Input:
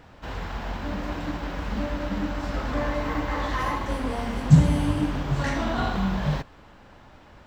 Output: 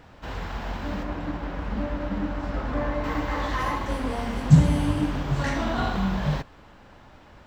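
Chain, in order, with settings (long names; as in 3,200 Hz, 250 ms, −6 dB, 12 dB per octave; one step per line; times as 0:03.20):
0:01.03–0:03.04: high-shelf EQ 3,200 Hz −11 dB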